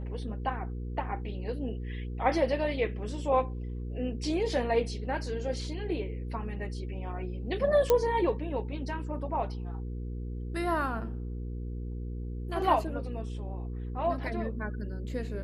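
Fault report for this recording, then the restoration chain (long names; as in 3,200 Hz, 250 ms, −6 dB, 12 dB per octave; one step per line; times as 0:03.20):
mains hum 60 Hz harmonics 8 −36 dBFS
0:07.90: click −11 dBFS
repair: click removal
hum removal 60 Hz, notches 8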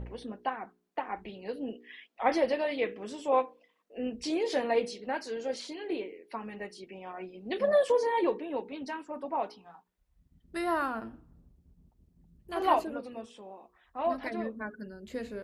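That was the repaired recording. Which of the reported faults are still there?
none of them is left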